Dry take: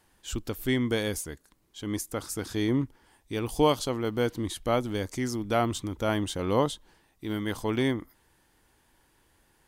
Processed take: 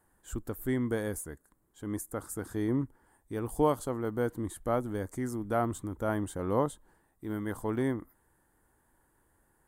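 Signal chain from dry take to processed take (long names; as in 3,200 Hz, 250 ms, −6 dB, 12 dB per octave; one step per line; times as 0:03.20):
flat-topped bell 3,700 Hz −14.5 dB
level −3.5 dB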